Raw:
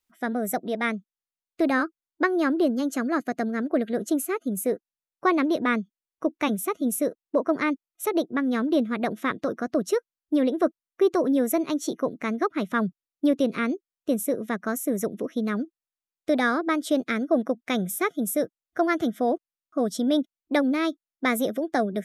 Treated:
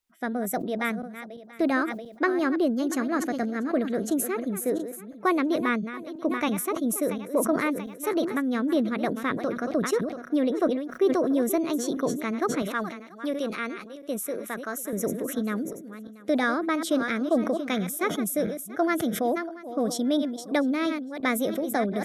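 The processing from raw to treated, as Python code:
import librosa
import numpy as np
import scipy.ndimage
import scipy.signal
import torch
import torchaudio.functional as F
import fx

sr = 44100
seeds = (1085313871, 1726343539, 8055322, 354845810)

y = fx.reverse_delay_fb(x, sr, ms=342, feedback_pct=40, wet_db=-12.5)
y = fx.highpass(y, sr, hz=650.0, slope=6, at=(12.62, 14.93))
y = fx.sustainer(y, sr, db_per_s=68.0)
y = y * librosa.db_to_amplitude(-2.0)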